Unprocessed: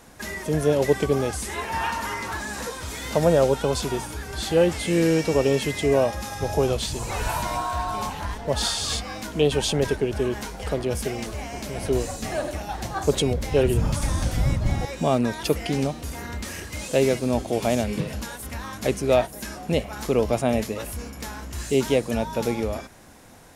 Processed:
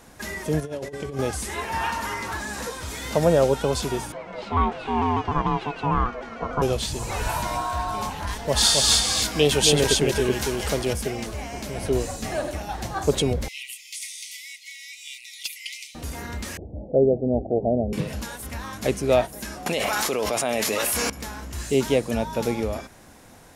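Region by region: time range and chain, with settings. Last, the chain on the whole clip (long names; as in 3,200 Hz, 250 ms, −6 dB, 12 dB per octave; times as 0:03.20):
0:00.60–0:01.19: low-pass filter 11,000 Hz + tuned comb filter 140 Hz, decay 1.3 s, mix 70% + compressor whose output falls as the input rises −31 dBFS, ratio −0.5
0:04.12–0:06.62: low-pass filter 2,300 Hz + ring modulation 580 Hz + pitch modulation by a square or saw wave saw down 6.7 Hz, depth 100 cents
0:08.27–0:10.93: high-shelf EQ 2,200 Hz +9 dB + single-tap delay 270 ms −3.5 dB
0:13.48–0:15.95: linear-phase brick-wall high-pass 1,900 Hz + gain into a clipping stage and back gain 20.5 dB
0:16.57–0:17.93: Butterworth low-pass 770 Hz 72 dB per octave + dynamic equaliser 440 Hz, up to +4 dB, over −32 dBFS, Q 3.7
0:19.66–0:21.10: high-pass filter 950 Hz 6 dB per octave + envelope flattener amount 100%
whole clip: no processing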